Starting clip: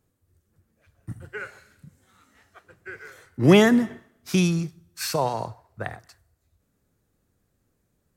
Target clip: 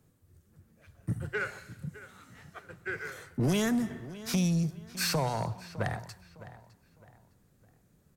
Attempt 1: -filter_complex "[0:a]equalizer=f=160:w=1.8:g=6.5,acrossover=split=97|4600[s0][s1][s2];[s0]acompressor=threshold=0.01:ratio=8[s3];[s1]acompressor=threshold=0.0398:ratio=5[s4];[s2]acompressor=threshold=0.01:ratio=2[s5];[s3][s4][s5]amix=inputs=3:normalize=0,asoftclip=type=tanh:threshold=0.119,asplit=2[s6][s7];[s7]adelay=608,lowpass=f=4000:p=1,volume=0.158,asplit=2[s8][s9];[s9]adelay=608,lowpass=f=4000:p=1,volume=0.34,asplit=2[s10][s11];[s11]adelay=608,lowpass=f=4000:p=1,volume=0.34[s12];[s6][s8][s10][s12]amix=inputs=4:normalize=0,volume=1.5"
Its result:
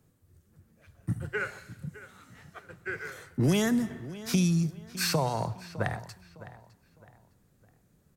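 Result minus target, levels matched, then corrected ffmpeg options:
saturation: distortion -10 dB
-filter_complex "[0:a]equalizer=f=160:w=1.8:g=6.5,acrossover=split=97|4600[s0][s1][s2];[s0]acompressor=threshold=0.01:ratio=8[s3];[s1]acompressor=threshold=0.0398:ratio=5[s4];[s2]acompressor=threshold=0.01:ratio=2[s5];[s3][s4][s5]amix=inputs=3:normalize=0,asoftclip=type=tanh:threshold=0.0501,asplit=2[s6][s7];[s7]adelay=608,lowpass=f=4000:p=1,volume=0.158,asplit=2[s8][s9];[s9]adelay=608,lowpass=f=4000:p=1,volume=0.34,asplit=2[s10][s11];[s11]adelay=608,lowpass=f=4000:p=1,volume=0.34[s12];[s6][s8][s10][s12]amix=inputs=4:normalize=0,volume=1.5"

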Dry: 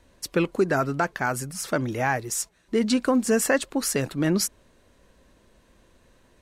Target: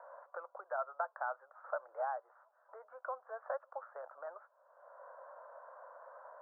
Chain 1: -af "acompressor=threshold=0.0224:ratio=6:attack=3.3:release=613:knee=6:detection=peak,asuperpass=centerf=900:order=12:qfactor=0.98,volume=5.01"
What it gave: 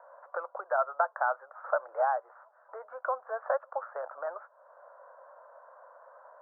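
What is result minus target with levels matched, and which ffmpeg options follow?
compression: peak gain reduction -10 dB
-af "acompressor=threshold=0.00562:ratio=6:attack=3.3:release=613:knee=6:detection=peak,asuperpass=centerf=900:order=12:qfactor=0.98,volume=5.01"

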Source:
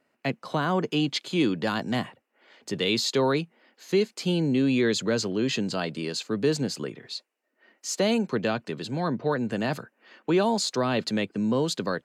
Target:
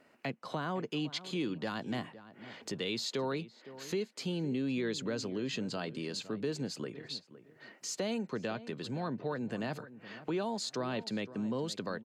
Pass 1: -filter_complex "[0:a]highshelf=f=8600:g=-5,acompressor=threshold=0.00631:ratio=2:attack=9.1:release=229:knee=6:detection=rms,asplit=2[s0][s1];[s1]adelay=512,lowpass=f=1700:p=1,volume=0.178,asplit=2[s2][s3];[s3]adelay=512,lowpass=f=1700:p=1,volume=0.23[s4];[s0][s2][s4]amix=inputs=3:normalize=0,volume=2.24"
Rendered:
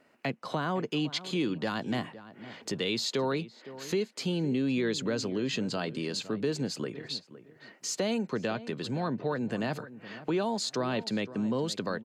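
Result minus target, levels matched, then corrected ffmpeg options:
compression: peak gain reduction -5 dB
-filter_complex "[0:a]highshelf=f=8600:g=-5,acompressor=threshold=0.002:ratio=2:attack=9.1:release=229:knee=6:detection=rms,asplit=2[s0][s1];[s1]adelay=512,lowpass=f=1700:p=1,volume=0.178,asplit=2[s2][s3];[s3]adelay=512,lowpass=f=1700:p=1,volume=0.23[s4];[s0][s2][s4]amix=inputs=3:normalize=0,volume=2.24"

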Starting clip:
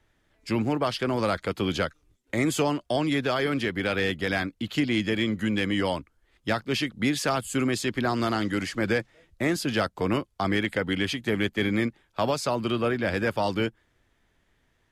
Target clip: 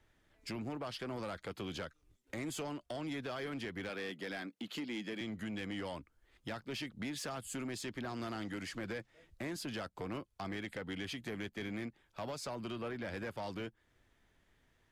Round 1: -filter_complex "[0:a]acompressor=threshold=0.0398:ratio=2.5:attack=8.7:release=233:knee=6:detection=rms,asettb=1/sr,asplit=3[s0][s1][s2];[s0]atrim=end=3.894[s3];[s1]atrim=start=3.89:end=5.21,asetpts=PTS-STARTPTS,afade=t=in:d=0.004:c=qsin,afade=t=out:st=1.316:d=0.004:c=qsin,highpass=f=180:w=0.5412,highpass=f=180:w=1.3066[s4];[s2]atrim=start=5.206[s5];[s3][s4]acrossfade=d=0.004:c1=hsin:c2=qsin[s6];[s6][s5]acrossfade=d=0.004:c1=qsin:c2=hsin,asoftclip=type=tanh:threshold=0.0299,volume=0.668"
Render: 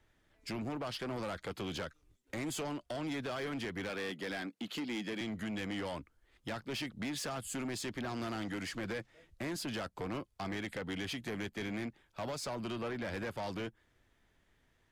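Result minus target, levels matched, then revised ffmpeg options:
compression: peak gain reduction -4.5 dB
-filter_complex "[0:a]acompressor=threshold=0.0168:ratio=2.5:attack=8.7:release=233:knee=6:detection=rms,asettb=1/sr,asplit=3[s0][s1][s2];[s0]atrim=end=3.894[s3];[s1]atrim=start=3.89:end=5.21,asetpts=PTS-STARTPTS,afade=t=in:d=0.004:c=qsin,afade=t=out:st=1.316:d=0.004:c=qsin,highpass=f=180:w=0.5412,highpass=f=180:w=1.3066[s4];[s2]atrim=start=5.206[s5];[s3][s4]acrossfade=d=0.004:c1=hsin:c2=qsin[s6];[s6][s5]acrossfade=d=0.004:c1=qsin:c2=hsin,asoftclip=type=tanh:threshold=0.0299,volume=0.668"

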